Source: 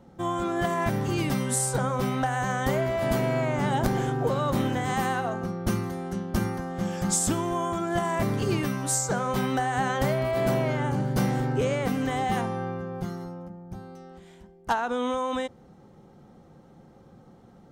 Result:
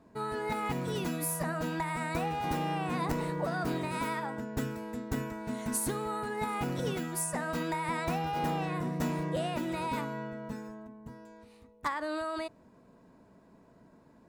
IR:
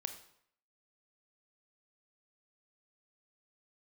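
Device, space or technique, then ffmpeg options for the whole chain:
nightcore: -af "asetrate=54684,aresample=44100,volume=-7dB"

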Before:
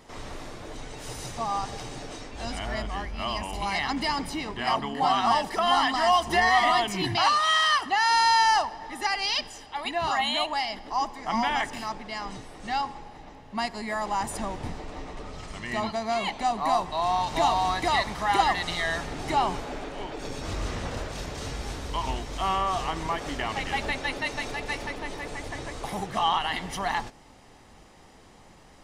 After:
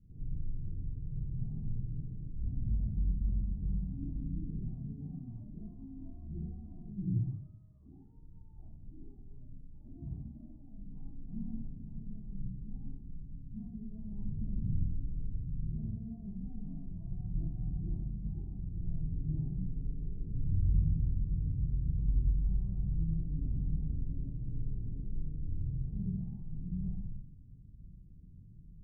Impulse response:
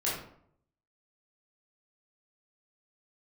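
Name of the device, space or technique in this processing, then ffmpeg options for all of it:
club heard from the street: -filter_complex "[0:a]alimiter=limit=-18dB:level=0:latency=1:release=359,lowpass=f=170:w=0.5412,lowpass=f=170:w=1.3066[a];[1:a]atrim=start_sample=2205[b];[a][b]afir=irnorm=-1:irlink=0,volume=-2dB"

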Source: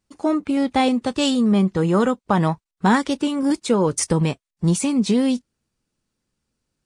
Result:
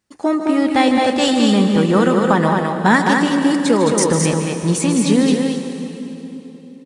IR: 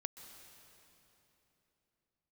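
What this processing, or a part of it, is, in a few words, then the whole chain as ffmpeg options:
stadium PA: -filter_complex "[0:a]highpass=f=140:p=1,equalizer=f=1.8k:t=o:w=0.31:g=7,aecho=1:1:151.6|215.7:0.316|0.631[a];[1:a]atrim=start_sample=2205[b];[a][b]afir=irnorm=-1:irlink=0,volume=6.5dB"

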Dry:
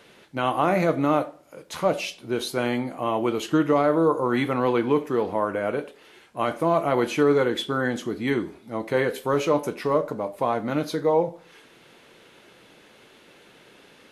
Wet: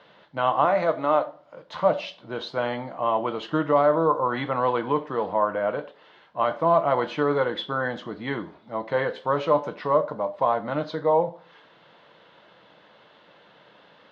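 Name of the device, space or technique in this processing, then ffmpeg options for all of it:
guitar cabinet: -filter_complex "[0:a]highpass=100,equalizer=f=110:t=q:w=4:g=-5,equalizer=f=250:t=q:w=4:g=-8,equalizer=f=380:t=q:w=4:g=-10,equalizer=f=610:t=q:w=4:g=4,equalizer=f=1k:t=q:w=4:g=5,equalizer=f=2.4k:t=q:w=4:g=-9,lowpass=f=3.9k:w=0.5412,lowpass=f=3.9k:w=1.3066,asettb=1/sr,asplit=3[a][b][c];[a]atrim=end=0.654[d];[b]atrim=start=0.65:end=1.26,asetpts=PTS-STARTPTS,afade=t=in:d=0.004:c=qsin,afade=t=out:st=0.606:d=0.004:c=qsin,bass=f=250:g=-11,treble=f=4k:g=2[e];[c]atrim=start=1.256[f];[d][e]acrossfade=d=0.004:c1=hsin:c2=qsin[g];[g][f]acrossfade=d=0.004:c1=qsin:c2=hsin"

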